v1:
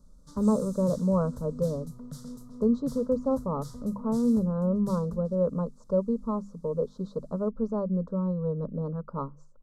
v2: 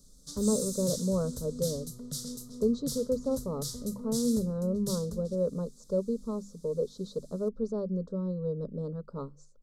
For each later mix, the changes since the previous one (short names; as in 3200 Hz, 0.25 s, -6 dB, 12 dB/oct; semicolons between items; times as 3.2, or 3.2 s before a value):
speech -4.5 dB; master: add EQ curve 260 Hz 0 dB, 390 Hz +6 dB, 990 Hz -8 dB, 3800 Hz +14 dB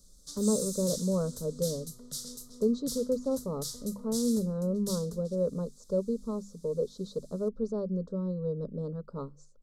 background: add low shelf 380 Hz -11.5 dB